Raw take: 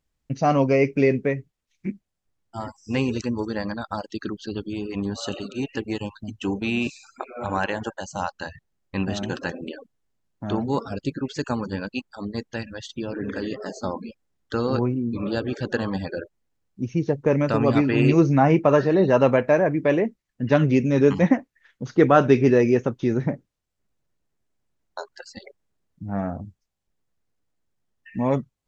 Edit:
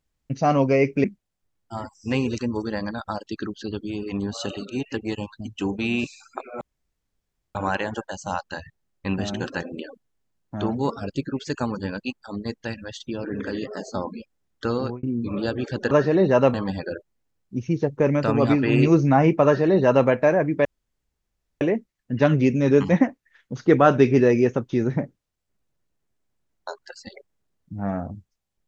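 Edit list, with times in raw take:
1.04–1.87 cut
7.44 insert room tone 0.94 s
14.63–14.92 fade out
18.7–19.33 copy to 15.8
19.91 insert room tone 0.96 s

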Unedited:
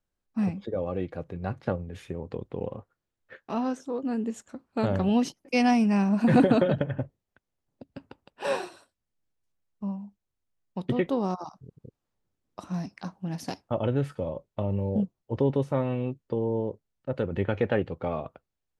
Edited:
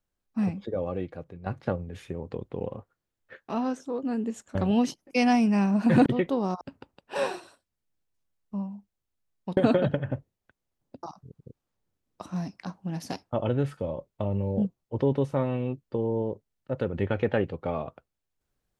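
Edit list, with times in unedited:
0.87–1.46 fade out, to -10 dB
4.55–4.93 cut
6.44–7.9 swap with 10.86–11.41

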